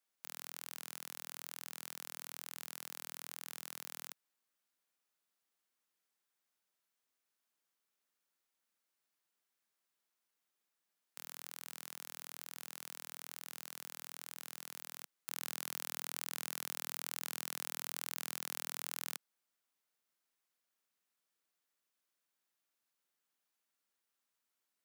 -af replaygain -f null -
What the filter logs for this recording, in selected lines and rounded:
track_gain = +30.1 dB
track_peak = 0.150